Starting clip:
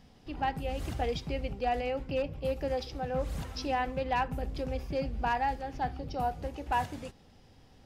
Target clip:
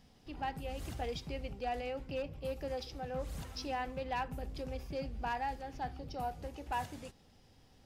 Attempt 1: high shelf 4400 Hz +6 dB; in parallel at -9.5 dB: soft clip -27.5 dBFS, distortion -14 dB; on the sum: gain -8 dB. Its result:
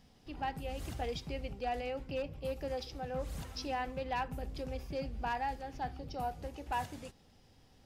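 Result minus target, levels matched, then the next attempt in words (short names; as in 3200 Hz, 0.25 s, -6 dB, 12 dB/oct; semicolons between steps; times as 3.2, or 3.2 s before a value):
soft clip: distortion -8 dB
high shelf 4400 Hz +6 dB; in parallel at -9.5 dB: soft clip -37.5 dBFS, distortion -6 dB; on the sum: gain -8 dB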